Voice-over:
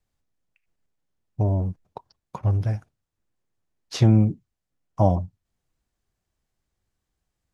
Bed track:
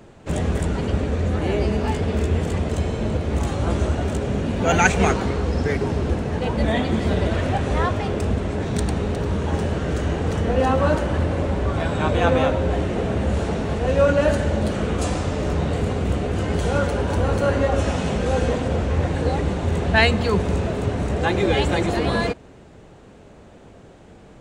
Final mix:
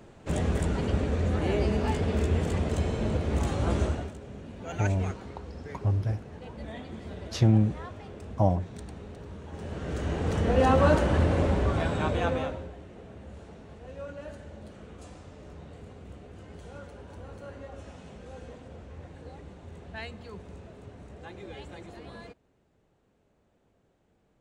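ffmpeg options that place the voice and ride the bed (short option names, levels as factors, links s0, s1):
-filter_complex "[0:a]adelay=3400,volume=0.596[s0];[1:a]volume=4.22,afade=t=out:st=3.82:d=0.31:silence=0.188365,afade=t=in:st=9.52:d=1.23:silence=0.133352,afade=t=out:st=11.45:d=1.28:silence=0.0841395[s1];[s0][s1]amix=inputs=2:normalize=0"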